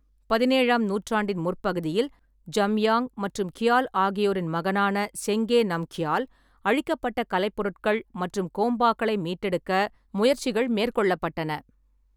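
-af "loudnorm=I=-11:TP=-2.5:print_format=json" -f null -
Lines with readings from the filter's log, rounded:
"input_i" : "-25.6",
"input_tp" : "-8.8",
"input_lra" : "1.7",
"input_thresh" : "-35.8",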